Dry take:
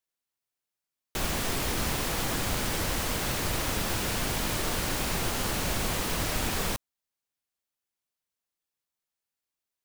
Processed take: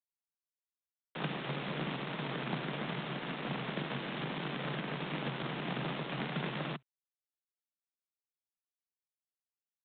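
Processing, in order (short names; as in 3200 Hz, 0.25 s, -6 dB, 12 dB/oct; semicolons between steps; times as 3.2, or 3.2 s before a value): power-law curve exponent 2; frequency shift +130 Hz; gain +1.5 dB; G.726 24 kbps 8000 Hz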